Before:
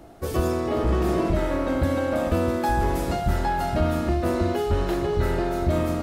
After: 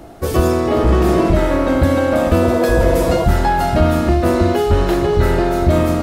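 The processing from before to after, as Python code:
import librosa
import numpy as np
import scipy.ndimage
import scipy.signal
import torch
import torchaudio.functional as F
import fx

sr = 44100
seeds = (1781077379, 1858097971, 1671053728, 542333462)

y = fx.spec_repair(x, sr, seeds[0], start_s=2.45, length_s=0.77, low_hz=330.0, high_hz=1200.0, source='before')
y = F.gain(torch.from_numpy(y), 9.0).numpy()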